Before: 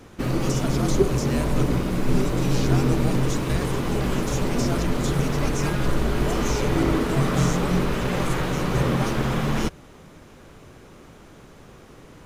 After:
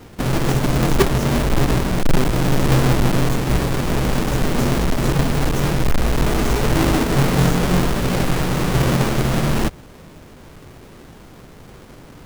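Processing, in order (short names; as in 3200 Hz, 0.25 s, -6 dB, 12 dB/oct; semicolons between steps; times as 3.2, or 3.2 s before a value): half-waves squared off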